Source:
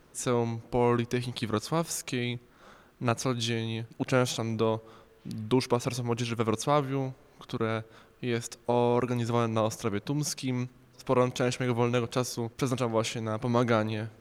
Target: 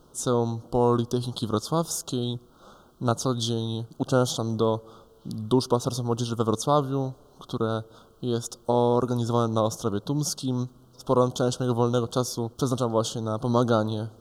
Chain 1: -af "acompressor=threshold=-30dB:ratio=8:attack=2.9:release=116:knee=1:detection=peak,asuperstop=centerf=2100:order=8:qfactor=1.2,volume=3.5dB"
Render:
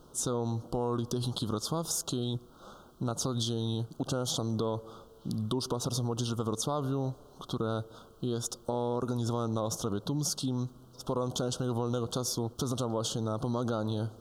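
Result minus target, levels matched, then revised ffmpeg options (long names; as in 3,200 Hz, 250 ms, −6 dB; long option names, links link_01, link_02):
downward compressor: peak gain reduction +12.5 dB
-af "asuperstop=centerf=2100:order=8:qfactor=1.2,volume=3.5dB"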